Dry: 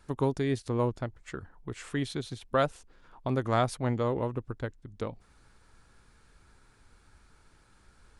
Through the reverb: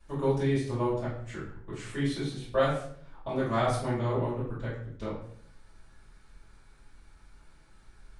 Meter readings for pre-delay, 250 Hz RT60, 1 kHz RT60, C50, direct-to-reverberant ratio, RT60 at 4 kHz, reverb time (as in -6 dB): 3 ms, 0.80 s, 0.50 s, 3.5 dB, -12.0 dB, 0.45 s, 0.60 s